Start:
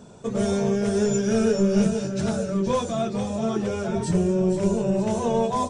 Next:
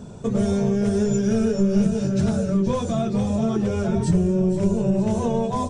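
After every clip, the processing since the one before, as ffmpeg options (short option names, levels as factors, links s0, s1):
-af "acompressor=threshold=0.0447:ratio=2.5,lowshelf=f=230:g=11.5,volume=1.26"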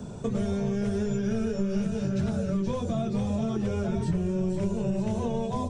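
-filter_complex "[0:a]acrossover=split=110|930|2000|4000[s0][s1][s2][s3][s4];[s0]acompressor=threshold=0.0224:ratio=4[s5];[s1]acompressor=threshold=0.0398:ratio=4[s6];[s2]acompressor=threshold=0.00398:ratio=4[s7];[s3]acompressor=threshold=0.00251:ratio=4[s8];[s4]acompressor=threshold=0.00158:ratio=4[s9];[s5][s6][s7][s8][s9]amix=inputs=5:normalize=0"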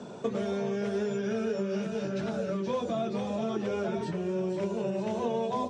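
-af "highpass=310,lowpass=4900,volume=1.33"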